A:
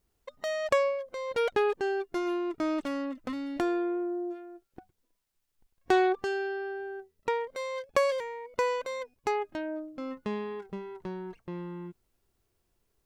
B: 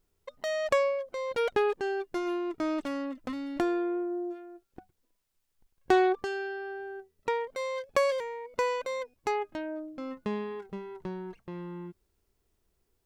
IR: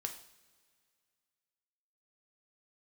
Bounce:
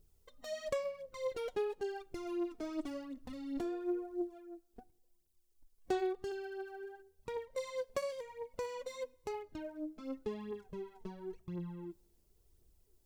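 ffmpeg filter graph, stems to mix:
-filter_complex "[0:a]volume=0.794[s0];[1:a]alimiter=limit=0.0668:level=0:latency=1:release=432,equalizer=f=200:w=1.5:g=-4,aphaser=in_gain=1:out_gain=1:delay=4.7:decay=0.54:speed=0.95:type=triangular,volume=-1,volume=1.12,asplit=2[s1][s2];[s2]volume=0.141[s3];[2:a]atrim=start_sample=2205[s4];[s3][s4]afir=irnorm=-1:irlink=0[s5];[s0][s1][s5]amix=inputs=3:normalize=0,equalizer=f=1500:w=0.49:g=-11"

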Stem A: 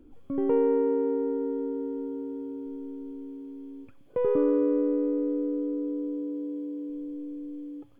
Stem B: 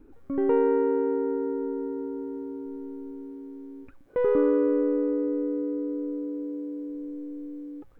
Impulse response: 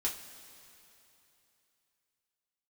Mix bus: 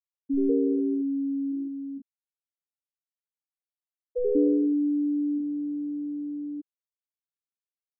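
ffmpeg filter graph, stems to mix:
-filter_complex "[0:a]bandreject=f=235.1:t=h:w=4,bandreject=f=470.2:t=h:w=4,bandreject=f=705.3:t=h:w=4,volume=0.473,asplit=2[s0][s1];[s1]volume=0.422[s2];[1:a]volume=1,asplit=2[s3][s4];[s4]volume=0.119[s5];[2:a]atrim=start_sample=2205[s6];[s2][s5]amix=inputs=2:normalize=0[s7];[s7][s6]afir=irnorm=-1:irlink=0[s8];[s0][s3][s8]amix=inputs=3:normalize=0,afftfilt=real='re*gte(hypot(re,im),0.355)':imag='im*gte(hypot(re,im),0.355)':win_size=1024:overlap=0.75,crystalizer=i=3.5:c=0"

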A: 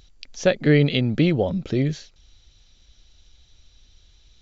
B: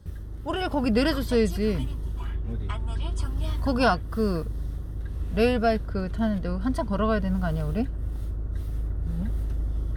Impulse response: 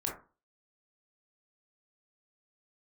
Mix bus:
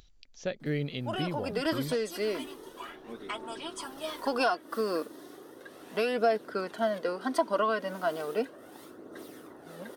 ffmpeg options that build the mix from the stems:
-filter_complex "[0:a]volume=0.178,asplit=2[s0][s1];[1:a]highpass=f=310:w=0.5412,highpass=f=310:w=1.3066,acompressor=threshold=0.0501:ratio=10,aphaser=in_gain=1:out_gain=1:delay=3.9:decay=0.37:speed=0.35:type=triangular,adelay=600,volume=1.33[s2];[s1]apad=whole_len=466036[s3];[s2][s3]sidechaincompress=threshold=0.0178:ratio=8:attack=25:release=985[s4];[s0][s4]amix=inputs=2:normalize=0,acompressor=mode=upward:threshold=0.00251:ratio=2.5"

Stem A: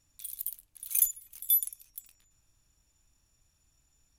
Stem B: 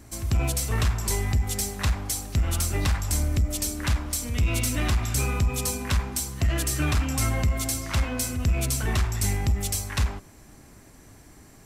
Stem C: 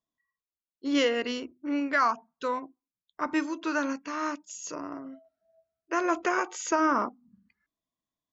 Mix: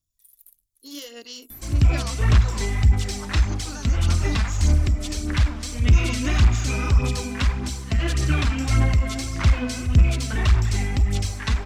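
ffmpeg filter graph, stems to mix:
-filter_complex "[0:a]equalizer=f=1200:w=0.35:g=-14.5,volume=0.211[s0];[1:a]lowpass=7200,equalizer=f=680:t=o:w=2.1:g=-4,adelay=1500,volume=1.41[s1];[2:a]aexciter=amount=8.2:drive=4.7:freq=3300,volume=0.224[s2];[s0][s2]amix=inputs=2:normalize=0,alimiter=limit=0.0631:level=0:latency=1:release=395,volume=1[s3];[s1][s3]amix=inputs=2:normalize=0,acrossover=split=5300[s4][s5];[s5]acompressor=threshold=0.01:ratio=4:attack=1:release=60[s6];[s4][s6]amix=inputs=2:normalize=0,aphaser=in_gain=1:out_gain=1:delay=4.6:decay=0.47:speed=1.7:type=sinusoidal"

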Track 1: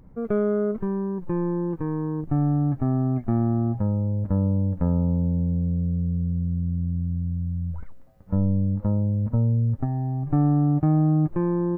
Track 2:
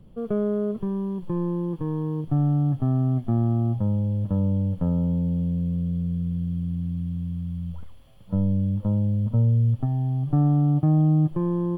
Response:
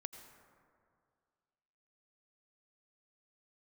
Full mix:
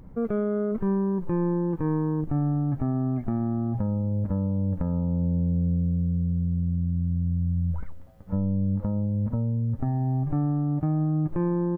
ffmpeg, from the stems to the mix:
-filter_complex "[0:a]alimiter=limit=0.0708:level=0:latency=1:release=36,volume=1.33,asplit=2[s0][s1];[s1]volume=0.237[s2];[1:a]volume=-1,adelay=2,volume=0.119[s3];[2:a]atrim=start_sample=2205[s4];[s2][s4]afir=irnorm=-1:irlink=0[s5];[s0][s3][s5]amix=inputs=3:normalize=0"

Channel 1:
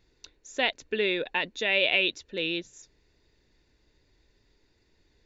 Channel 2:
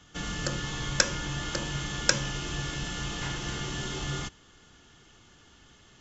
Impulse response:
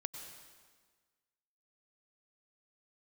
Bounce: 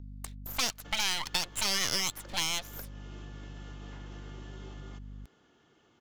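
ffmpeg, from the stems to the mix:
-filter_complex "[0:a]agate=range=0.0447:threshold=0.002:ratio=16:detection=peak,aeval=exprs='abs(val(0))':c=same,aeval=exprs='val(0)+0.00562*(sin(2*PI*50*n/s)+sin(2*PI*2*50*n/s)/2+sin(2*PI*3*50*n/s)/3+sin(2*PI*4*50*n/s)/4+sin(2*PI*5*50*n/s)/5)':c=same,volume=1.33[s0];[1:a]acompressor=threshold=0.0126:ratio=8,bandpass=f=430:t=q:w=0.78:csg=0,adelay=700,volume=0.668[s1];[s0][s1]amix=inputs=2:normalize=0,highshelf=f=2100:g=9.5,acrossover=split=550|2200[s2][s3][s4];[s2]acompressor=threshold=0.0112:ratio=4[s5];[s3]acompressor=threshold=0.0141:ratio=4[s6];[s4]acompressor=threshold=0.0355:ratio=4[s7];[s5][s6][s7]amix=inputs=3:normalize=0"

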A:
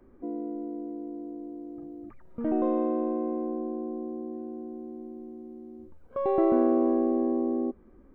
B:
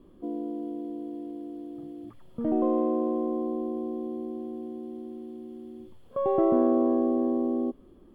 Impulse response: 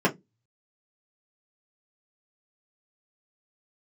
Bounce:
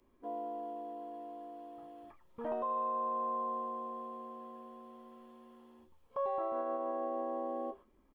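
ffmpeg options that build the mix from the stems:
-filter_complex "[0:a]aexciter=amount=12.6:drive=6.4:freq=2200,volume=0.188[s0];[1:a]agate=range=0.224:threshold=0.00794:ratio=16:detection=peak,highpass=f=810:w=0.5412,highpass=f=810:w=1.3066,adelay=0.9,volume=1.12,asplit=2[s1][s2];[s2]volume=0.355[s3];[2:a]atrim=start_sample=2205[s4];[s3][s4]afir=irnorm=-1:irlink=0[s5];[s0][s1][s5]amix=inputs=3:normalize=0,highshelf=f=2200:g=-11.5,alimiter=level_in=1.58:limit=0.0631:level=0:latency=1:release=342,volume=0.631"

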